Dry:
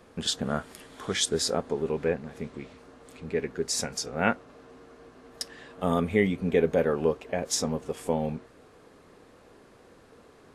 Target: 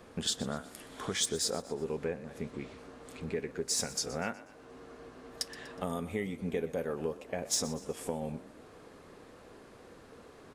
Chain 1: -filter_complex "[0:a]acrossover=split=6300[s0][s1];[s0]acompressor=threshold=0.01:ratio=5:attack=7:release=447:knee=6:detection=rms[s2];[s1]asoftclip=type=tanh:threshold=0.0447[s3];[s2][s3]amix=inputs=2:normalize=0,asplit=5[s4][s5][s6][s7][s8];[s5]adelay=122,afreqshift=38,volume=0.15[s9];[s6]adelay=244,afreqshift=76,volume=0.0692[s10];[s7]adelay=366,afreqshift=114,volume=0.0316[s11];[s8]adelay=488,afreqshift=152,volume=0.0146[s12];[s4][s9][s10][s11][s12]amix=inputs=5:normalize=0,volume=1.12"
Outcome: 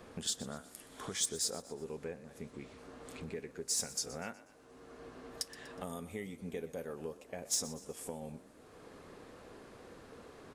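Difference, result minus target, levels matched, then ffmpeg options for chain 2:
compression: peak gain reduction +7.5 dB
-filter_complex "[0:a]acrossover=split=6300[s0][s1];[s0]acompressor=threshold=0.0299:ratio=5:attack=7:release=447:knee=6:detection=rms[s2];[s1]asoftclip=type=tanh:threshold=0.0447[s3];[s2][s3]amix=inputs=2:normalize=0,asplit=5[s4][s5][s6][s7][s8];[s5]adelay=122,afreqshift=38,volume=0.15[s9];[s6]adelay=244,afreqshift=76,volume=0.0692[s10];[s7]adelay=366,afreqshift=114,volume=0.0316[s11];[s8]adelay=488,afreqshift=152,volume=0.0146[s12];[s4][s9][s10][s11][s12]amix=inputs=5:normalize=0,volume=1.12"

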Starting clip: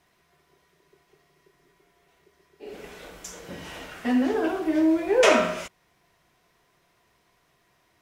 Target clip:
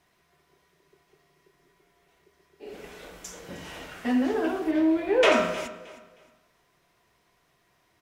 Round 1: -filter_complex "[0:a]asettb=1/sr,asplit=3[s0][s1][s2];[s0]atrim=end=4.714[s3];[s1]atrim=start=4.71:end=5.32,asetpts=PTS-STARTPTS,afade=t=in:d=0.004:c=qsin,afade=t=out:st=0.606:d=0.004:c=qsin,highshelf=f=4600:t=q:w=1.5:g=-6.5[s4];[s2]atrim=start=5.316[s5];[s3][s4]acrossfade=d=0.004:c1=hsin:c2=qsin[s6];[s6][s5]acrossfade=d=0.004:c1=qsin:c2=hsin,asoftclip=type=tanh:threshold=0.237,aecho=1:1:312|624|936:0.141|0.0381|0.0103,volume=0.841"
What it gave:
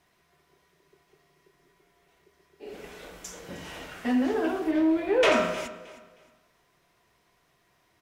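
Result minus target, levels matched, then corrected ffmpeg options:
saturation: distortion +10 dB
-filter_complex "[0:a]asettb=1/sr,asplit=3[s0][s1][s2];[s0]atrim=end=4.714[s3];[s1]atrim=start=4.71:end=5.32,asetpts=PTS-STARTPTS,afade=t=in:d=0.004:c=qsin,afade=t=out:st=0.606:d=0.004:c=qsin,highshelf=f=4600:t=q:w=1.5:g=-6.5[s4];[s2]atrim=start=5.316[s5];[s3][s4]acrossfade=d=0.004:c1=hsin:c2=qsin[s6];[s6][s5]acrossfade=d=0.004:c1=qsin:c2=hsin,asoftclip=type=tanh:threshold=0.501,aecho=1:1:312|624|936:0.141|0.0381|0.0103,volume=0.841"

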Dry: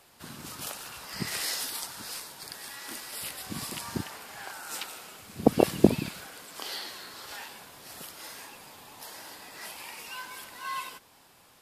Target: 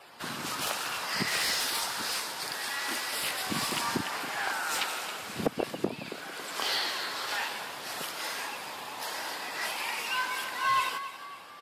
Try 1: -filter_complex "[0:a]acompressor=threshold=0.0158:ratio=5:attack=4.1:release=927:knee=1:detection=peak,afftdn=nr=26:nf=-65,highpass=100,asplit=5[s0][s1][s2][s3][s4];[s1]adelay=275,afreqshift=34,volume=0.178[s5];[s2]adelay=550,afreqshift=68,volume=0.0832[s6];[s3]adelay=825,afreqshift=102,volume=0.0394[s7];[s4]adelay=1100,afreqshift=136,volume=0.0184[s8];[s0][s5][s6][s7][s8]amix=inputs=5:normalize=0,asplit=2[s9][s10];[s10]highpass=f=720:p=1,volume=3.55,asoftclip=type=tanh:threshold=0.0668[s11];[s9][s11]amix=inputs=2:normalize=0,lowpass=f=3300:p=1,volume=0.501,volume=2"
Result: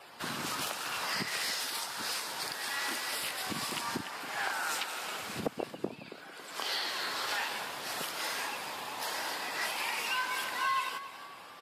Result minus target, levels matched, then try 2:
compression: peak gain reduction +7 dB
-filter_complex "[0:a]acompressor=threshold=0.0447:ratio=5:attack=4.1:release=927:knee=1:detection=peak,afftdn=nr=26:nf=-65,highpass=100,asplit=5[s0][s1][s2][s3][s4];[s1]adelay=275,afreqshift=34,volume=0.178[s5];[s2]adelay=550,afreqshift=68,volume=0.0832[s6];[s3]adelay=825,afreqshift=102,volume=0.0394[s7];[s4]adelay=1100,afreqshift=136,volume=0.0184[s8];[s0][s5][s6][s7][s8]amix=inputs=5:normalize=0,asplit=2[s9][s10];[s10]highpass=f=720:p=1,volume=3.55,asoftclip=type=tanh:threshold=0.0668[s11];[s9][s11]amix=inputs=2:normalize=0,lowpass=f=3300:p=1,volume=0.501,volume=2"

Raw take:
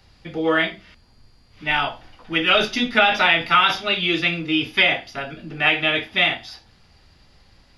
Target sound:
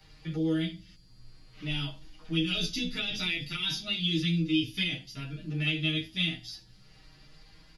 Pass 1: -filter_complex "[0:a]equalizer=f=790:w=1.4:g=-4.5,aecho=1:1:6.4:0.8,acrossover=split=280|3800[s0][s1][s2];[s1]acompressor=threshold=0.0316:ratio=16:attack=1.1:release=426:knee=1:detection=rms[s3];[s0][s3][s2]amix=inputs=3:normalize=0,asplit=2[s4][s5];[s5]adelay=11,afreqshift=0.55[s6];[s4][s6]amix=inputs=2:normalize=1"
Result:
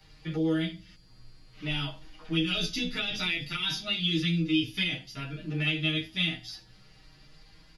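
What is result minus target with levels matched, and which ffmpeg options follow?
compression: peak gain reduction -6.5 dB
-filter_complex "[0:a]equalizer=f=790:w=1.4:g=-4.5,aecho=1:1:6.4:0.8,acrossover=split=280|3800[s0][s1][s2];[s1]acompressor=threshold=0.0141:ratio=16:attack=1.1:release=426:knee=1:detection=rms[s3];[s0][s3][s2]amix=inputs=3:normalize=0,asplit=2[s4][s5];[s5]adelay=11,afreqshift=0.55[s6];[s4][s6]amix=inputs=2:normalize=1"

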